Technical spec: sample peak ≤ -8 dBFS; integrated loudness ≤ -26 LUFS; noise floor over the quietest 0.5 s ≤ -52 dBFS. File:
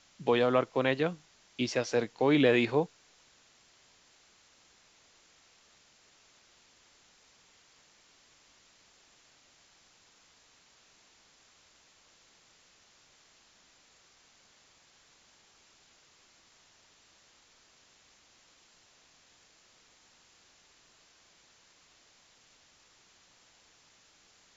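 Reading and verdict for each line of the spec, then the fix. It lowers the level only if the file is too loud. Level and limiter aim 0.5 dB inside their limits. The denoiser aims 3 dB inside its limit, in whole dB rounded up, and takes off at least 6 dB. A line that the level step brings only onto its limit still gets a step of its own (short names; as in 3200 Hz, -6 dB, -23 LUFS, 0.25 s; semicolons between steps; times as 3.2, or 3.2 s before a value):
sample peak -12.5 dBFS: OK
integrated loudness -28.5 LUFS: OK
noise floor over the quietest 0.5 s -63 dBFS: OK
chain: none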